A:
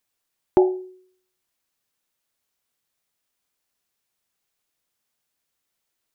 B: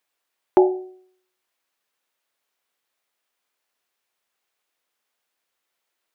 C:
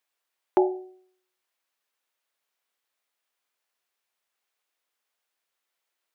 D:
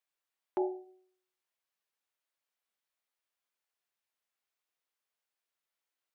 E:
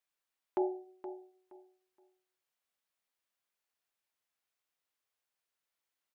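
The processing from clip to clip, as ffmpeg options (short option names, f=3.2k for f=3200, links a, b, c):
-af "bass=f=250:g=-15,treble=f=4k:g=-7,bandreject=f=149.9:t=h:w=4,bandreject=f=299.8:t=h:w=4,bandreject=f=449.7:t=h:w=4,bandreject=f=599.6:t=h:w=4,bandreject=f=749.5:t=h:w=4,volume=4.5dB"
-af "lowshelf=f=280:g=-7.5,volume=-3.5dB"
-af "alimiter=limit=-15dB:level=0:latency=1:release=15,flanger=delay=1.6:depth=2.4:regen=-76:speed=0.59:shape=triangular,volume=-4dB"
-af "aecho=1:1:471|942|1413:0.251|0.0578|0.0133"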